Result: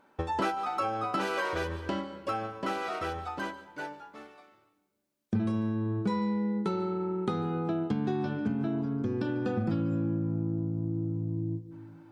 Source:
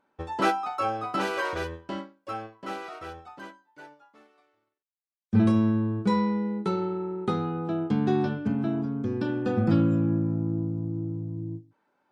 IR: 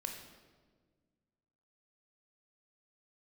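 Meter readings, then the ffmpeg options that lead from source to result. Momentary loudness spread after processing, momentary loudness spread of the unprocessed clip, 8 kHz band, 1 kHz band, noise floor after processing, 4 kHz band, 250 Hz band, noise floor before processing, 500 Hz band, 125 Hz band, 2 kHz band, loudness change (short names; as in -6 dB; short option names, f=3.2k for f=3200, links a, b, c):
8 LU, 15 LU, n/a, -2.0 dB, -70 dBFS, -2.0 dB, -4.5 dB, -82 dBFS, -3.0 dB, -4.0 dB, -2.0 dB, -4.0 dB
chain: -filter_complex "[0:a]asplit=2[a][b];[1:a]atrim=start_sample=2205,asetrate=37926,aresample=44100,adelay=144[c];[b][c]afir=irnorm=-1:irlink=0,volume=-16dB[d];[a][d]amix=inputs=2:normalize=0,acompressor=threshold=-39dB:ratio=4,volume=9dB"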